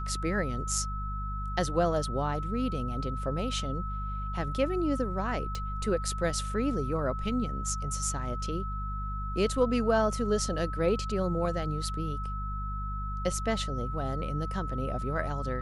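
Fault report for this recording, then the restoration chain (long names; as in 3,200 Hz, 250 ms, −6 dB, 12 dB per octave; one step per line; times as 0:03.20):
mains hum 50 Hz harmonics 4 −35 dBFS
whistle 1,300 Hz −37 dBFS
0:05.55: click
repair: click removal
notch filter 1,300 Hz, Q 30
hum removal 50 Hz, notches 4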